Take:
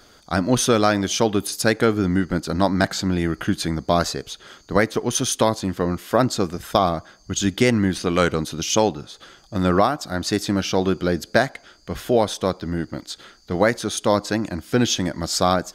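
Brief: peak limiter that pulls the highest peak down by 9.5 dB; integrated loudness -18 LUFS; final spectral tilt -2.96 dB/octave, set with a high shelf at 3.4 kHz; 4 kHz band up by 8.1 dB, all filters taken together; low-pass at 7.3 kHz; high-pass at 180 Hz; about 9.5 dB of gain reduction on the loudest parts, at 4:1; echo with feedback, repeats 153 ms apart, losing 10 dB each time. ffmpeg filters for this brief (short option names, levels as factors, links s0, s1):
-af "highpass=180,lowpass=7300,highshelf=f=3400:g=3.5,equalizer=f=4000:t=o:g=8,acompressor=threshold=0.0708:ratio=4,alimiter=limit=0.2:level=0:latency=1,aecho=1:1:153|306|459|612:0.316|0.101|0.0324|0.0104,volume=2.99"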